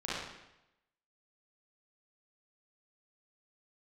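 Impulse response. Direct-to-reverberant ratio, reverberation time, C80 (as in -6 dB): -9.0 dB, 0.90 s, 1.0 dB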